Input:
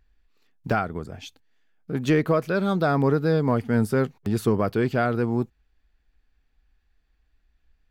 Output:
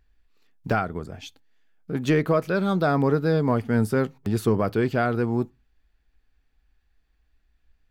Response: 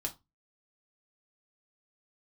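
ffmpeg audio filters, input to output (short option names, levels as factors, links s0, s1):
-filter_complex "[0:a]asplit=2[s0][s1];[s1]lowpass=3000[s2];[1:a]atrim=start_sample=2205,adelay=11[s3];[s2][s3]afir=irnorm=-1:irlink=0,volume=0.119[s4];[s0][s4]amix=inputs=2:normalize=0"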